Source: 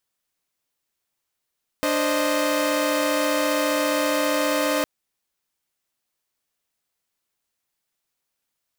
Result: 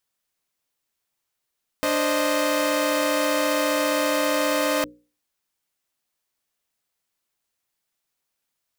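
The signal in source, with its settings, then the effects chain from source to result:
chord D4/C5/D#5 saw, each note -22 dBFS 3.01 s
notches 60/120/180/240/300/360/420/480/540 Hz

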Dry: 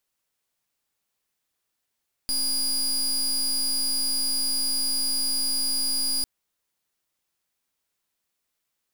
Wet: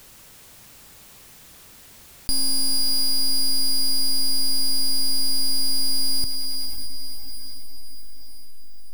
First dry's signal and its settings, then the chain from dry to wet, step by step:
pulse 4870 Hz, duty 27% -25 dBFS 3.95 s
low shelf 240 Hz +11.5 dB; on a send: diffused feedback echo 0.539 s, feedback 47%, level -10 dB; on the sum: fast leveller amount 50%

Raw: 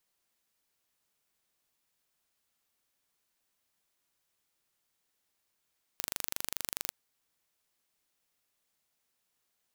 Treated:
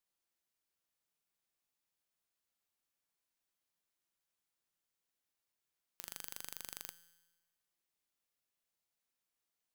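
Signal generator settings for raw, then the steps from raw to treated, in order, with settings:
pulse train 24.7/s, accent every 0, -6.5 dBFS 0.91 s
resonator 170 Hz, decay 1.2 s, mix 70%

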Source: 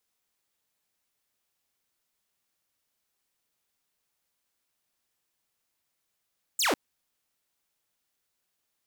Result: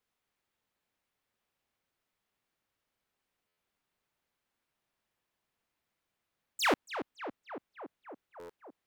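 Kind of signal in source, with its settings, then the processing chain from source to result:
laser zap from 8700 Hz, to 230 Hz, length 0.15 s saw, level -20 dB
tone controls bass +2 dB, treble -11 dB; tape echo 0.281 s, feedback 85%, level -7.5 dB, low-pass 1800 Hz; stuck buffer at 3.47/8.39, samples 512

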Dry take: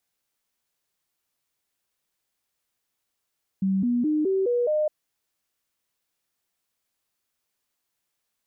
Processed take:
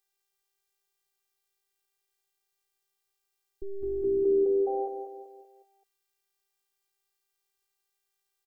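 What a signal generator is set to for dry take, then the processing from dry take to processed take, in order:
stepped sine 192 Hz up, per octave 3, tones 6, 0.21 s, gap 0.00 s -20 dBFS
on a send: feedback echo 0.191 s, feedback 46%, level -8 dB; on the sum: robotiser 392 Hz

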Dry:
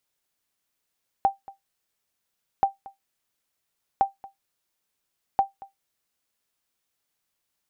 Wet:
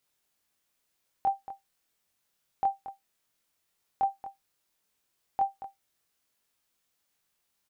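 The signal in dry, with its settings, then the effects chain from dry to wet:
sonar ping 786 Hz, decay 0.15 s, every 1.38 s, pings 4, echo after 0.23 s, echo -21.5 dB -11 dBFS
limiter -22 dBFS; doubler 23 ms -2.5 dB

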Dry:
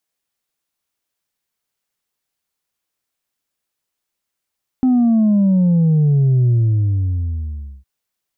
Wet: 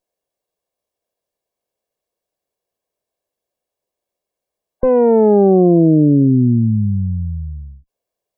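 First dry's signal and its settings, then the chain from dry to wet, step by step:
sub drop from 260 Hz, over 3.01 s, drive 2 dB, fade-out 1.35 s, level -11 dB
minimum comb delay 1.8 ms; spectral gate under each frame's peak -30 dB strong; EQ curve 140 Hz 0 dB, 280 Hz +10 dB, 790 Hz +10 dB, 1200 Hz -5 dB

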